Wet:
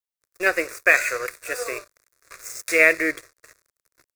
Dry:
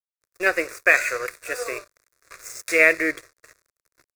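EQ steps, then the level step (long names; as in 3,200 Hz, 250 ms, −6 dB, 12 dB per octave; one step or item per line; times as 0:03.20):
high-shelf EQ 8,000 Hz +4 dB
0.0 dB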